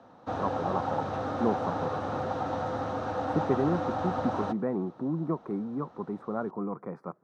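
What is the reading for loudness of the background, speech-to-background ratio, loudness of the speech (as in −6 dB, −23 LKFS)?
−32.5 LKFS, −1.0 dB, −33.5 LKFS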